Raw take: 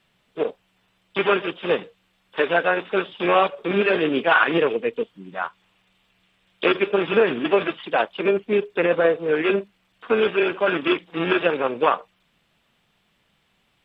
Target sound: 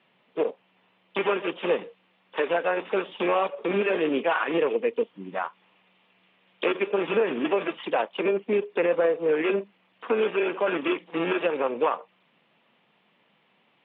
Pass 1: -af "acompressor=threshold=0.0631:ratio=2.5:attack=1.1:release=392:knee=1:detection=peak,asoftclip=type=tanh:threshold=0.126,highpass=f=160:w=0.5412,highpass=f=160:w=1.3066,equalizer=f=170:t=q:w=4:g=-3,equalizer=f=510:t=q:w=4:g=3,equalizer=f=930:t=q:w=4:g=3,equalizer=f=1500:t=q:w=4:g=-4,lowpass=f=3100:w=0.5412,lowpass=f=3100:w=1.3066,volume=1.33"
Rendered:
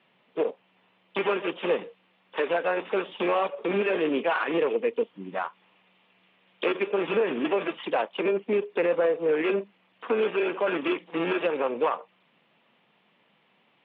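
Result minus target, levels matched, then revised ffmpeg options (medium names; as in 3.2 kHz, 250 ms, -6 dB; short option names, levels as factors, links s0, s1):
saturation: distortion +21 dB
-af "acompressor=threshold=0.0631:ratio=2.5:attack=1.1:release=392:knee=1:detection=peak,asoftclip=type=tanh:threshold=0.473,highpass=f=160:w=0.5412,highpass=f=160:w=1.3066,equalizer=f=170:t=q:w=4:g=-3,equalizer=f=510:t=q:w=4:g=3,equalizer=f=930:t=q:w=4:g=3,equalizer=f=1500:t=q:w=4:g=-4,lowpass=f=3100:w=0.5412,lowpass=f=3100:w=1.3066,volume=1.33"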